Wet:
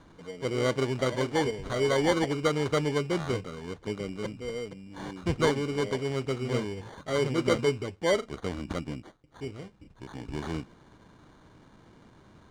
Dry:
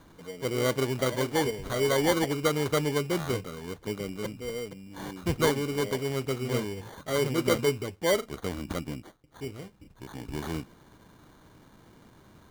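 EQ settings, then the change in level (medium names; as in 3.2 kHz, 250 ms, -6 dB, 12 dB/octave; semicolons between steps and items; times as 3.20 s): Savitzky-Golay filter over 9 samples; treble shelf 6.2 kHz -6.5 dB; 0.0 dB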